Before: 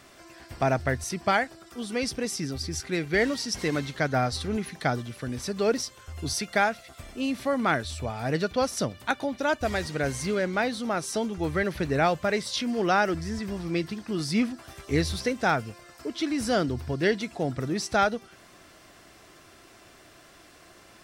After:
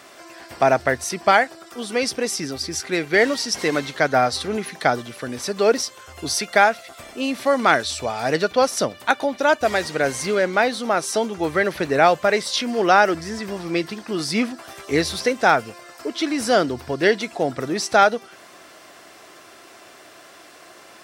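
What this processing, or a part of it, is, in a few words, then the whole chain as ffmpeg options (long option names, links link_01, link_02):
filter by subtraction: -filter_complex "[0:a]asplit=2[link_01][link_02];[link_02]lowpass=590,volume=-1[link_03];[link_01][link_03]amix=inputs=2:normalize=0,asettb=1/sr,asplit=3[link_04][link_05][link_06];[link_04]atrim=end=7.464[link_07];[link_05]atrim=start=7.46:end=8.36,asetpts=PTS-STARTPTS,afade=type=in:duration=0.004:curve=qsin,afade=type=out:start_time=0.896:duration=0.004:curve=qsin,equalizer=frequency=5500:width=0.89:gain=6[link_08];[link_06]atrim=start=8.356[link_09];[link_07][link_08]acrossfade=duration=0.004:curve1=hsin:curve2=qsin[link_10];[link_10][link_09]acrossfade=duration=0.004:curve1=qsin:curve2=hsin,volume=7dB"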